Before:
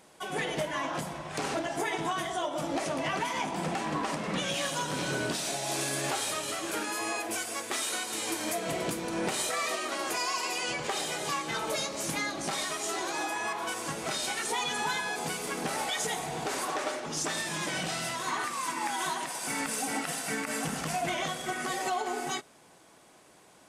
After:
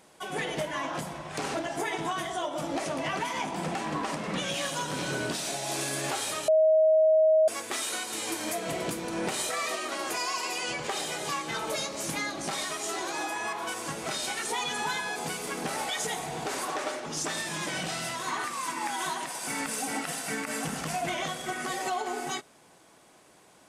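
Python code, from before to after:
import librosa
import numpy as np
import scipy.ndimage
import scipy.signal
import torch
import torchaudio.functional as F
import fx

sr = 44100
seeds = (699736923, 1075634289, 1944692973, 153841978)

y = fx.edit(x, sr, fx.bleep(start_s=6.48, length_s=1.0, hz=631.0, db=-17.5), tone=tone)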